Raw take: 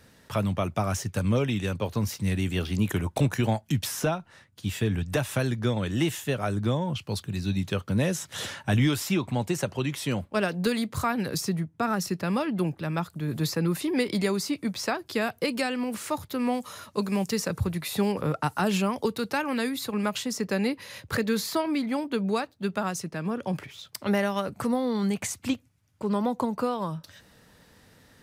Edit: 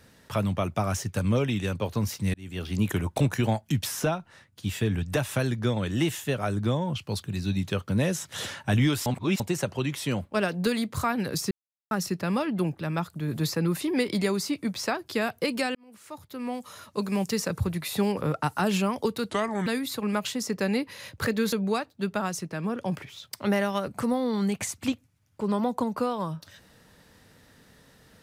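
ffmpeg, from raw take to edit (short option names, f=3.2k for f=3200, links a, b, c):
-filter_complex "[0:a]asplit=10[a][b][c][d][e][f][g][h][i][j];[a]atrim=end=2.34,asetpts=PTS-STARTPTS,afade=t=out:st=2.336:d=0.004:c=hsin[k];[b]atrim=start=2.34:end=9.062,asetpts=PTS-STARTPTS,afade=t=in:d=0.47[l];[c]atrim=start=9.058:end=9.402,asetpts=PTS-STARTPTS,areverse[m];[d]atrim=start=9.398:end=11.51,asetpts=PTS-STARTPTS,afade=t=out:st=2.108:d=0.004:c=hsin[n];[e]atrim=start=11.51:end=11.91,asetpts=PTS-STARTPTS,volume=0[o];[f]atrim=start=11.91:end=15.75,asetpts=PTS-STARTPTS,afade=t=in:d=0.004:c=hsin,afade=t=out:st=3.836:d=0.004:c=hsin[p];[g]atrim=start=15.75:end=19.304,asetpts=PTS-STARTPTS,afade=t=in:d=1.47[q];[h]atrim=start=19.3:end=19.57,asetpts=PTS-STARTPTS,asetrate=32634,aresample=44100[r];[i]atrim=start=19.566:end=21.432[s];[j]atrim=start=22.138[t];[k][l]concat=n=2:v=0:a=1[u];[u][m]acrossfade=d=0.004:c1=hsin:c2=hsin[v];[n][o][p][q]concat=n=4:v=0:a=1[w];[v][w]acrossfade=d=0.004:c1=hsin:c2=hsin[x];[x][r]acrossfade=d=0.004:c1=hsin:c2=hsin[y];[y][s]acrossfade=d=0.004:c1=hsin:c2=hsin[z];[z][t]acrossfade=d=0.004:c1=hsin:c2=hsin"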